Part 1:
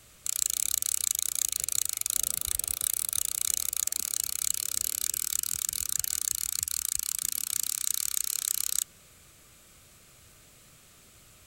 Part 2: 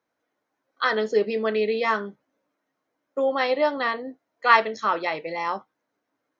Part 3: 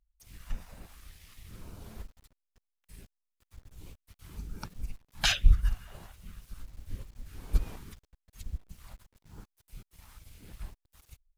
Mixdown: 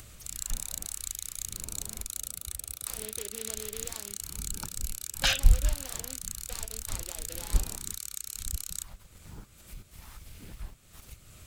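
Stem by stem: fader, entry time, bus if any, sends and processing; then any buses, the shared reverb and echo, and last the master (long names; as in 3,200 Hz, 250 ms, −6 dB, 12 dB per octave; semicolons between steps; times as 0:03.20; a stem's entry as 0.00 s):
−9.0 dB, 0.00 s, no send, low-shelf EQ 170 Hz +10.5 dB
−14.5 dB, 2.05 s, no send, downward compressor, threshold −24 dBFS, peak gain reduction 13 dB; brickwall limiter −21.5 dBFS, peak gain reduction 7.5 dB; short delay modulated by noise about 2,700 Hz, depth 0.18 ms
+0.5 dB, 0.00 s, no send, no processing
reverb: not used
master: upward compression, threshold −39 dBFS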